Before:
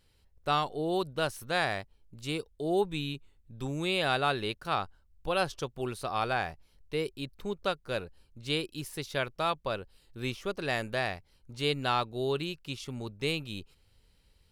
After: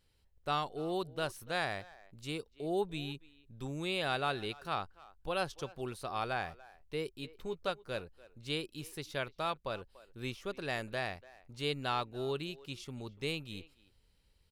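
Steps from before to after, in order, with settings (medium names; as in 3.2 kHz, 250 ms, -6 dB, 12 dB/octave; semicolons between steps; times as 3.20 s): 7.16–7.70 s: doubling 12 ms -8.5 dB; speakerphone echo 290 ms, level -19 dB; trim -5.5 dB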